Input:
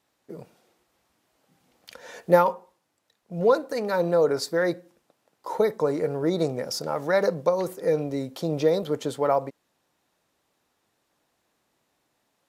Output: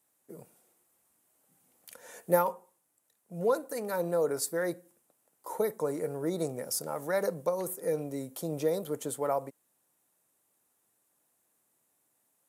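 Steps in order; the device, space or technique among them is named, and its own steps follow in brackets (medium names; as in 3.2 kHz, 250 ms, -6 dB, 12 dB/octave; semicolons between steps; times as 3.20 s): budget condenser microphone (high-pass 90 Hz; resonant high shelf 6.7 kHz +13.5 dB, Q 1.5); trim -7.5 dB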